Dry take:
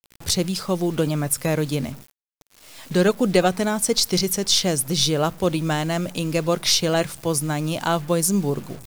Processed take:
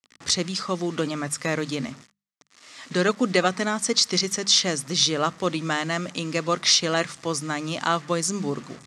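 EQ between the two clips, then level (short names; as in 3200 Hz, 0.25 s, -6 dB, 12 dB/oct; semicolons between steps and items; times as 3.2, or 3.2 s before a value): speaker cabinet 130–7200 Hz, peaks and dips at 260 Hz +5 dB, 1200 Hz +9 dB, 1900 Hz +8 dB; high shelf 3000 Hz +8 dB; notches 50/100/150/200 Hz; -5.0 dB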